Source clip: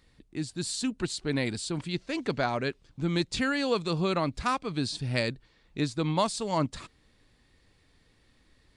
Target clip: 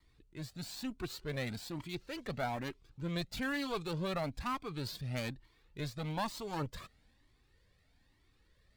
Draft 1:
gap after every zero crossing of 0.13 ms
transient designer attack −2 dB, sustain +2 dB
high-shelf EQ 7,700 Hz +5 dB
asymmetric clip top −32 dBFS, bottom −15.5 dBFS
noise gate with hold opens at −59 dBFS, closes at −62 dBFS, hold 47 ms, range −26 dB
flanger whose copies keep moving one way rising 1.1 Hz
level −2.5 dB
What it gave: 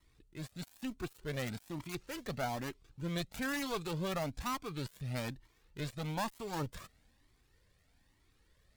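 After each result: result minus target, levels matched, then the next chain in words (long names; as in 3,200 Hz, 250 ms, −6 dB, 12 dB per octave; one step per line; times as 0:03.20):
gap after every zero crossing: distortion +6 dB; 8,000 Hz band +3.0 dB
gap after every zero crossing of 0.036 ms
transient designer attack −2 dB, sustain +2 dB
high-shelf EQ 7,700 Hz +5 dB
asymmetric clip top −32 dBFS, bottom −15.5 dBFS
noise gate with hold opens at −59 dBFS, closes at −62 dBFS, hold 47 ms, range −26 dB
flanger whose copies keep moving one way rising 1.1 Hz
level −2.5 dB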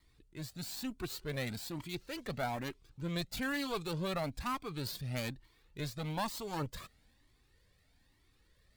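8,000 Hz band +3.5 dB
gap after every zero crossing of 0.036 ms
transient designer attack −2 dB, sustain +2 dB
high-shelf EQ 7,700 Hz −4 dB
asymmetric clip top −32 dBFS, bottom −15.5 dBFS
noise gate with hold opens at −59 dBFS, closes at −62 dBFS, hold 47 ms, range −26 dB
flanger whose copies keep moving one way rising 1.1 Hz
level −2.5 dB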